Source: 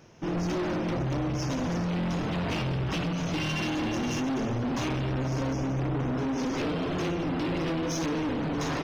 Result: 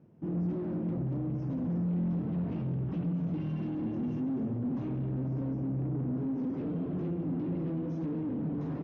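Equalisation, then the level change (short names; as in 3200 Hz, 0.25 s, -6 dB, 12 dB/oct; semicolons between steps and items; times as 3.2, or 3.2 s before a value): band-pass 190 Hz, Q 1.3; air absorption 70 m; 0.0 dB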